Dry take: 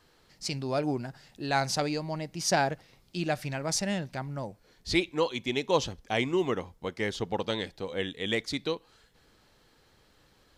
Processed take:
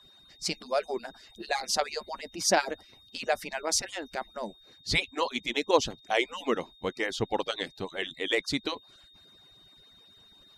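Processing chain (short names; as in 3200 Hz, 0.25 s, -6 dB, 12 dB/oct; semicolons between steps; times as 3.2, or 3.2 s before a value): median-filter separation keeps percussive; whine 3700 Hz -58 dBFS; gain +3 dB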